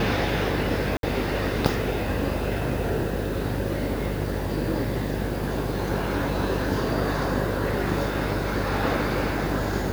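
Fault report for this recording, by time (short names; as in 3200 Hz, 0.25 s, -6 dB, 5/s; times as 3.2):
buzz 50 Hz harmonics 11 -30 dBFS
0.97–1.03 gap 62 ms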